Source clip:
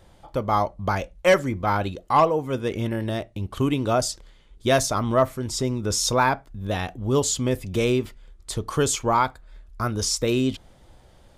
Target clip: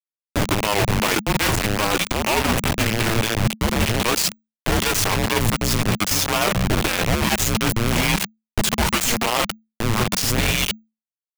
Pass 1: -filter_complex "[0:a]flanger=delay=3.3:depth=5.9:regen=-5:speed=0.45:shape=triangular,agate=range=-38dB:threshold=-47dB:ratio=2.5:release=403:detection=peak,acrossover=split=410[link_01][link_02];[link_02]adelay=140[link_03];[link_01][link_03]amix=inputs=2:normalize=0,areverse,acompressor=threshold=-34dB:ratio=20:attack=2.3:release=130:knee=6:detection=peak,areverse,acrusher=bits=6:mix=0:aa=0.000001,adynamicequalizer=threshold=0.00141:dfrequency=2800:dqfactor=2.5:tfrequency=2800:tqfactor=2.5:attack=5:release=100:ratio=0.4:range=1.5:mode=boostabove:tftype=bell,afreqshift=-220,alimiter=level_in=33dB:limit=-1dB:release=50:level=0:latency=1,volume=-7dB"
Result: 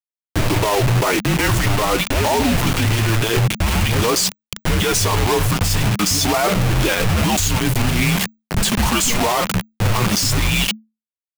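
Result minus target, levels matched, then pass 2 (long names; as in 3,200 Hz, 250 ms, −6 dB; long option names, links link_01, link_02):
downward compressor: peak gain reduction −7 dB
-filter_complex "[0:a]flanger=delay=3.3:depth=5.9:regen=-5:speed=0.45:shape=triangular,agate=range=-38dB:threshold=-47dB:ratio=2.5:release=403:detection=peak,acrossover=split=410[link_01][link_02];[link_02]adelay=140[link_03];[link_01][link_03]amix=inputs=2:normalize=0,areverse,acompressor=threshold=-41.5dB:ratio=20:attack=2.3:release=130:knee=6:detection=peak,areverse,acrusher=bits=6:mix=0:aa=0.000001,adynamicequalizer=threshold=0.00141:dfrequency=2800:dqfactor=2.5:tfrequency=2800:tqfactor=2.5:attack=5:release=100:ratio=0.4:range=1.5:mode=boostabove:tftype=bell,afreqshift=-220,alimiter=level_in=33dB:limit=-1dB:release=50:level=0:latency=1,volume=-7dB"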